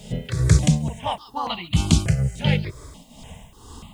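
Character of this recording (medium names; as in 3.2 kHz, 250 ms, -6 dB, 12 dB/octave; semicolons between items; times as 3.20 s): tremolo triangle 2.2 Hz, depth 80%; a quantiser's noise floor 12-bit, dither triangular; notches that jump at a steady rate 3.4 Hz 300–1600 Hz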